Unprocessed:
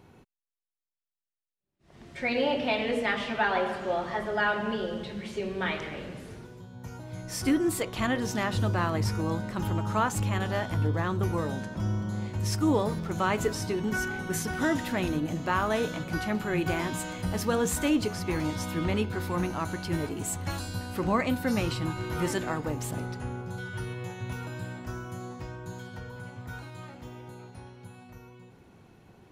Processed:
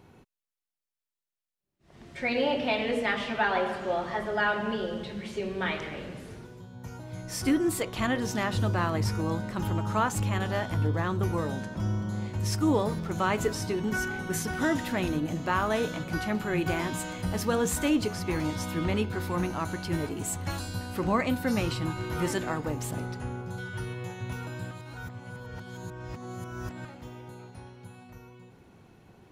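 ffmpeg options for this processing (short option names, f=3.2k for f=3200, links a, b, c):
-filter_complex "[0:a]asplit=3[a][b][c];[a]atrim=end=24.712[d];[b]atrim=start=24.708:end=26.852,asetpts=PTS-STARTPTS,areverse[e];[c]atrim=start=26.848[f];[d][e]acrossfade=d=0.004:c1=hsin:c2=hsin[g];[g][f]acrossfade=d=0.004:c1=hsin:c2=hsin"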